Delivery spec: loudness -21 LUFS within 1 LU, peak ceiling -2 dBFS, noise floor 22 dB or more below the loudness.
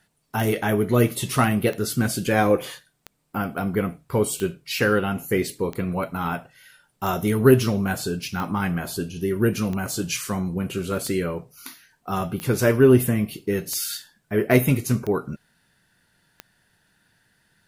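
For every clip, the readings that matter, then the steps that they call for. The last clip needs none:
clicks 13; loudness -23.0 LUFS; peak -2.5 dBFS; loudness target -21.0 LUFS
-> de-click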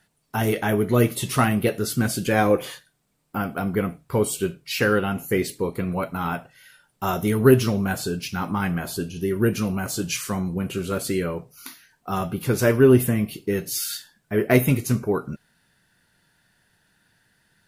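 clicks 0; loudness -23.0 LUFS; peak -2.5 dBFS; loudness target -21.0 LUFS
-> gain +2 dB; limiter -2 dBFS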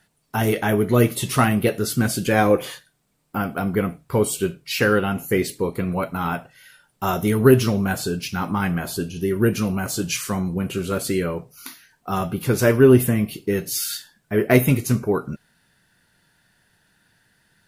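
loudness -21.5 LUFS; peak -2.0 dBFS; noise floor -67 dBFS

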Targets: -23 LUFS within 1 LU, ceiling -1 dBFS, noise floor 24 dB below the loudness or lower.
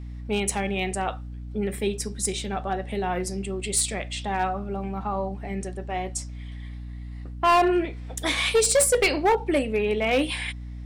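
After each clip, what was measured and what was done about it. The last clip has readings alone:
clipped 1.1%; flat tops at -15.0 dBFS; hum 60 Hz; harmonics up to 300 Hz; hum level -34 dBFS; loudness -25.5 LUFS; peak -15.0 dBFS; loudness target -23.0 LUFS
-> clip repair -15 dBFS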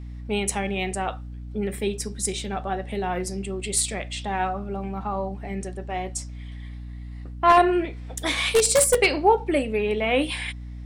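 clipped 0.0%; hum 60 Hz; harmonics up to 300 Hz; hum level -34 dBFS
-> de-hum 60 Hz, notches 5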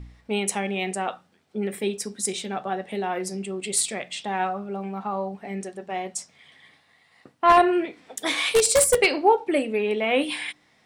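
hum none; loudness -24.5 LUFS; peak -5.5 dBFS; loudness target -23.0 LUFS
-> gain +1.5 dB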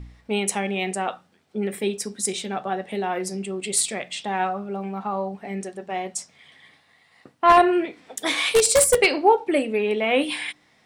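loudness -23.0 LUFS; peak -4.0 dBFS; noise floor -60 dBFS

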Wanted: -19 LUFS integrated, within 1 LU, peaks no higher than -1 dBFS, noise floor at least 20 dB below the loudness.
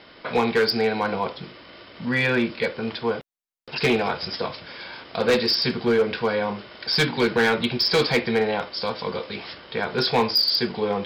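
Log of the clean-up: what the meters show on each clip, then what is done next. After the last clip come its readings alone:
clipped 1.2%; flat tops at -14.0 dBFS; loudness -23.0 LUFS; peak -14.0 dBFS; loudness target -19.0 LUFS
-> clip repair -14 dBFS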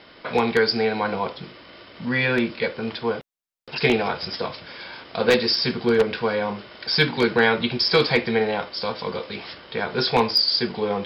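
clipped 0.0%; loudness -22.0 LUFS; peak -5.0 dBFS; loudness target -19.0 LUFS
-> gain +3 dB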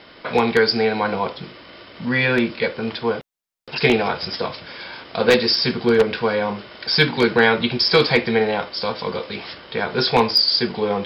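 loudness -19.0 LUFS; peak -2.0 dBFS; noise floor -45 dBFS

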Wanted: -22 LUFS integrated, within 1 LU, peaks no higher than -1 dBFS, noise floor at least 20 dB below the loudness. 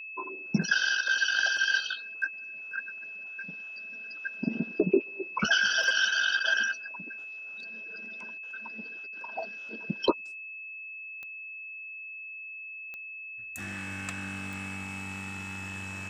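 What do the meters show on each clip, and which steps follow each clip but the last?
clicks 4; steady tone 2600 Hz; tone level -39 dBFS; loudness -31.0 LUFS; peak -11.5 dBFS; loudness target -22.0 LUFS
-> de-click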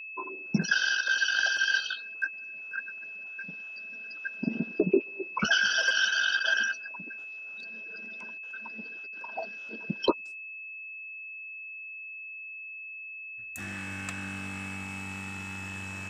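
clicks 0; steady tone 2600 Hz; tone level -39 dBFS
-> notch 2600 Hz, Q 30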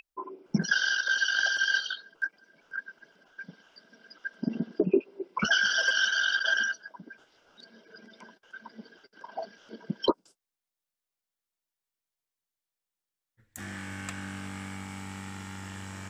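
steady tone none; loudness -28.5 LUFS; peak -12.0 dBFS; loudness target -22.0 LUFS
-> gain +6.5 dB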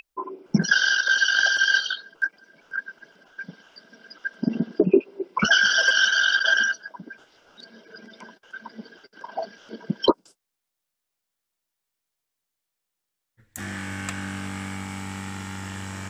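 loudness -22.0 LUFS; peak -5.5 dBFS; noise floor -83 dBFS

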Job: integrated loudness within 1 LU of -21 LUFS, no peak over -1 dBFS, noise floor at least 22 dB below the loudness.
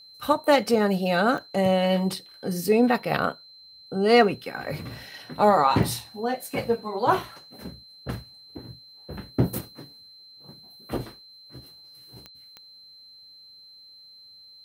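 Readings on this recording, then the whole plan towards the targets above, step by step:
clicks 4; steady tone 4100 Hz; tone level -47 dBFS; loudness -24.0 LUFS; peak -6.5 dBFS; loudness target -21.0 LUFS
-> de-click; notch 4100 Hz, Q 30; gain +3 dB

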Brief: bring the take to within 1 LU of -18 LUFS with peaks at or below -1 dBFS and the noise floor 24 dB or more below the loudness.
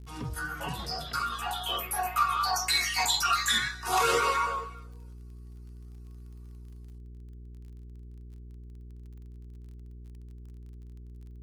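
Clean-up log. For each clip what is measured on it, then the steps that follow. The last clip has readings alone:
ticks 28/s; hum 60 Hz; harmonics up to 420 Hz; hum level -43 dBFS; loudness -28.0 LUFS; peak -12.5 dBFS; loudness target -18.0 LUFS
-> de-click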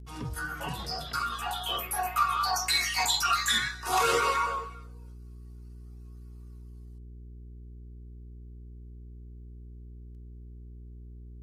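ticks 0.18/s; hum 60 Hz; harmonics up to 420 Hz; hum level -43 dBFS
-> de-hum 60 Hz, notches 7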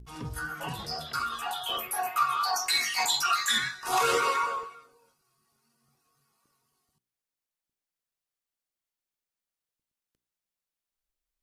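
hum none; loudness -28.0 LUFS; peak -12.5 dBFS; loudness target -18.0 LUFS
-> gain +10 dB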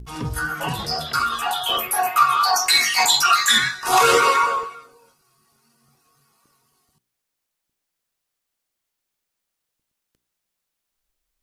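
loudness -18.0 LUFS; peak -2.5 dBFS; noise floor -80 dBFS

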